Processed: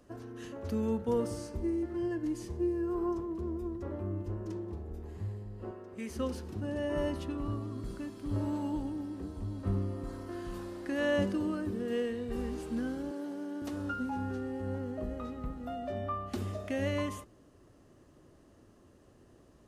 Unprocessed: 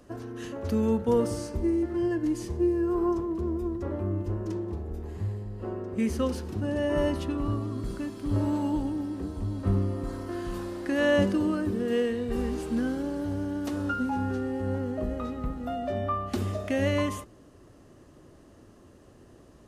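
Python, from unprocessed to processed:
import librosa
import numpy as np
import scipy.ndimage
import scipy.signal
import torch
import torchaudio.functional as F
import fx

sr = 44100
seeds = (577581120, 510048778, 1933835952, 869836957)

y = fx.low_shelf(x, sr, hz=410.0, db=-10.0, at=(5.71, 6.16))
y = fx.highpass(y, sr, hz=230.0, slope=24, at=(13.11, 13.62))
y = F.gain(torch.from_numpy(y), -6.5).numpy()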